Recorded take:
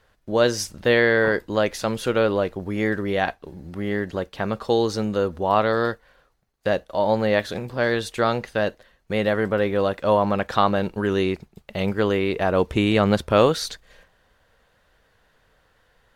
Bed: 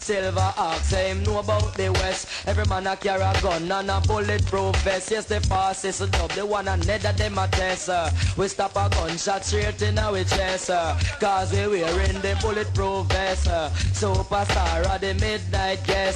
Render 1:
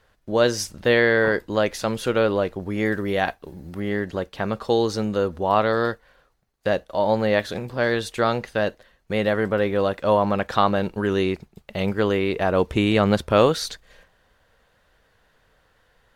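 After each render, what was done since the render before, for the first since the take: 2.85–3.80 s: treble shelf 11 kHz +10.5 dB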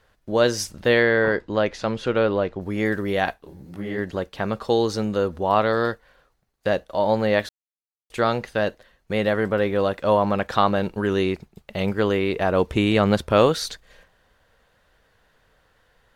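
1.03–2.61 s: distance through air 110 m; 3.33–3.97 s: detune thickener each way 56 cents -> 44 cents; 7.49–8.10 s: mute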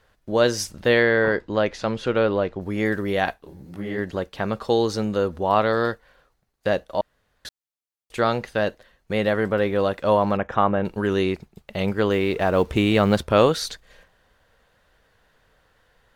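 7.01–7.45 s: room tone; 10.37–10.85 s: boxcar filter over 10 samples; 12.11–13.23 s: companding laws mixed up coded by mu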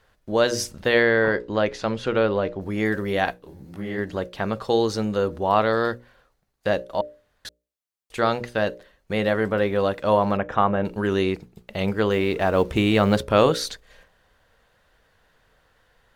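hum notches 60/120/180/240/300/360/420/480/540/600 Hz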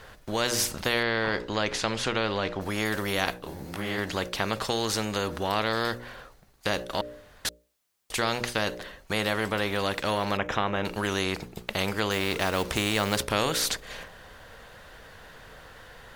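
compression 1.5:1, threshold -24 dBFS, peak gain reduction 5 dB; spectrum-flattening compressor 2:1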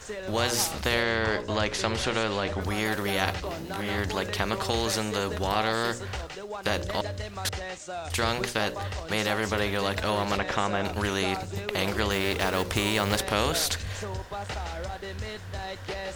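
add bed -12.5 dB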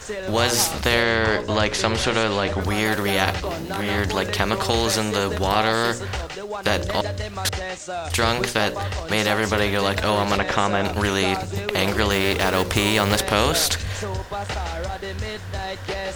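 trim +6.5 dB; peak limiter -3 dBFS, peak gain reduction 1.5 dB

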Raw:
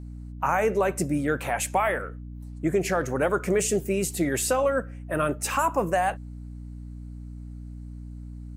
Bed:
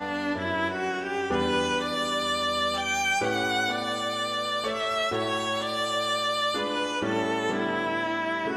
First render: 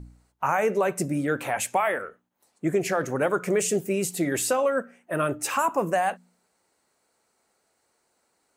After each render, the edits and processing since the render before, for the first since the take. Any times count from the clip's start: de-hum 60 Hz, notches 5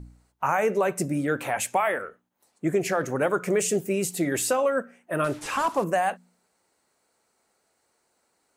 5.24–5.84 s: one-bit delta coder 64 kbps, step -39.5 dBFS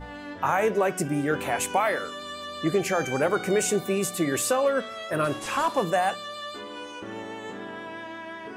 add bed -10 dB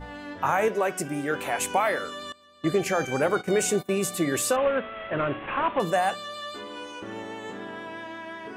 0.68–1.61 s: bass shelf 280 Hz -8 dB; 2.32–3.99 s: gate -32 dBFS, range -19 dB; 4.56–5.80 s: CVSD coder 16 kbps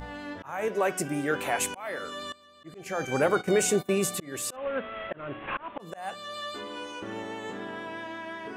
slow attack 439 ms; upward compressor, threshold -49 dBFS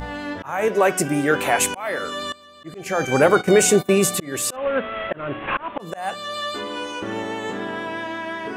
trim +9 dB

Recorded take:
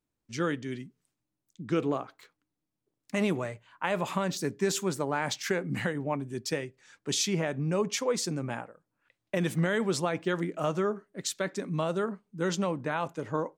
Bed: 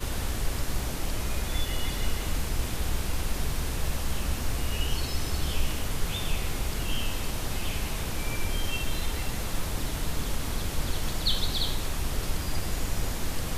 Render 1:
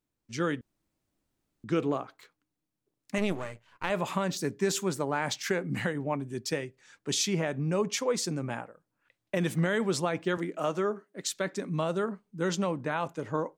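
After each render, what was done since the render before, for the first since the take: 0.61–1.64 s: room tone; 3.18–3.90 s: partial rectifier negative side -12 dB; 10.37–11.33 s: high-pass 200 Hz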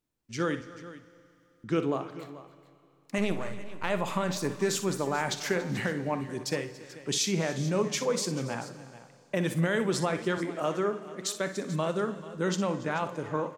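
multi-tap echo 44/60/283/436 ms -16.5/-12.5/-19/-16 dB; Schroeder reverb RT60 2.8 s, combs from 29 ms, DRR 15 dB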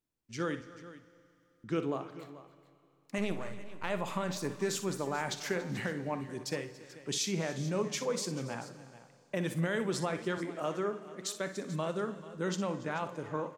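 trim -5 dB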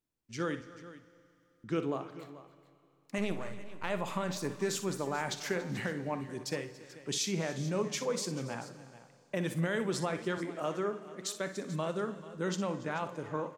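no audible change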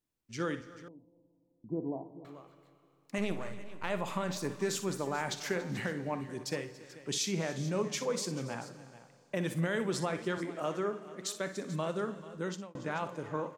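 0.88–2.25 s: rippled Chebyshev low-pass 990 Hz, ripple 6 dB; 12.35–12.75 s: fade out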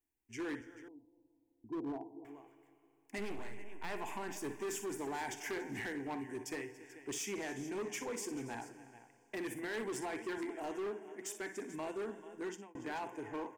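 static phaser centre 830 Hz, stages 8; overload inside the chain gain 36 dB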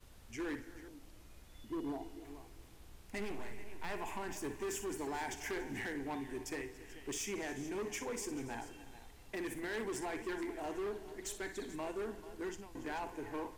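add bed -28 dB

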